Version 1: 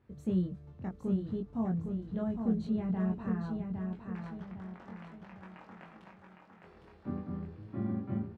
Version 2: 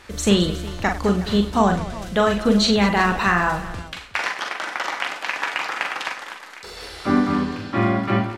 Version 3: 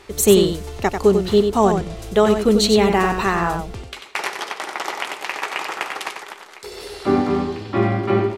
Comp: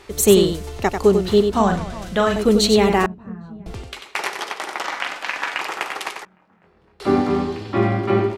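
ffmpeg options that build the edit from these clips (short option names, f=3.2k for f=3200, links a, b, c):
-filter_complex "[1:a]asplit=2[a][b];[0:a]asplit=2[c][d];[2:a]asplit=5[e][f][g][h][i];[e]atrim=end=1.522[j];[a]atrim=start=1.518:end=2.362[k];[f]atrim=start=2.358:end=3.062[l];[c]atrim=start=3.058:end=3.662[m];[g]atrim=start=3.658:end=4.842[n];[b]atrim=start=4.838:end=5.612[o];[h]atrim=start=5.608:end=6.252[p];[d]atrim=start=6.248:end=7.002[q];[i]atrim=start=6.998[r];[j][k]acrossfade=d=0.004:c1=hsin:c2=hsin[s];[s][l]acrossfade=d=0.004:c1=hsin:c2=hsin[t];[t][m]acrossfade=d=0.004:c1=hsin:c2=hsin[u];[u][n]acrossfade=d=0.004:c1=hsin:c2=hsin[v];[v][o]acrossfade=d=0.004:c1=hsin:c2=hsin[w];[w][p]acrossfade=d=0.004:c1=hsin:c2=hsin[x];[x][q]acrossfade=d=0.004:c1=hsin:c2=hsin[y];[y][r]acrossfade=d=0.004:c1=hsin:c2=hsin"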